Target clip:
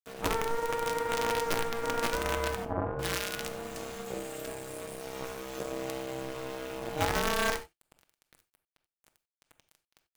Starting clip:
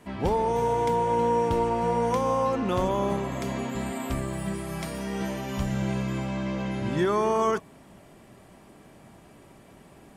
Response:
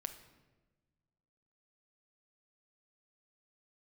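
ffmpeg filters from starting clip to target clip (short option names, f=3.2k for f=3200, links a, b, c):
-filter_complex "[0:a]highshelf=f=2.8k:g=6.5,bandreject=f=50:t=h:w=6,bandreject=f=100:t=h:w=6,bandreject=f=150:t=h:w=6,bandreject=f=200:t=h:w=6,bandreject=f=250:t=h:w=6,acrusher=bits=4:dc=4:mix=0:aa=0.000001,aeval=exprs='val(0)*sin(2*PI*460*n/s)':c=same,asettb=1/sr,asplit=3[a][b][c];[a]atrim=end=2.654[d];[b]atrim=start=2.65:end=5.01,asetpts=PTS-STARTPTS,afade=t=in:d=0.004:c=qsin,afade=t=out:st=2.356:d=0.004:c=qsin,acrossover=split=1200[e][f];[f]adelay=340[g];[e][g]amix=inputs=2:normalize=0,atrim=end_sample=104076[h];[c]atrim=start=5.006[i];[d][h]acrossfade=d=0.004:c1=hsin:c2=qsin[j];[j][i]acrossfade=d=0.004:c1=qsin:c2=hsin[k];[1:a]atrim=start_sample=2205,atrim=end_sample=4410[l];[k][l]afir=irnorm=-1:irlink=0"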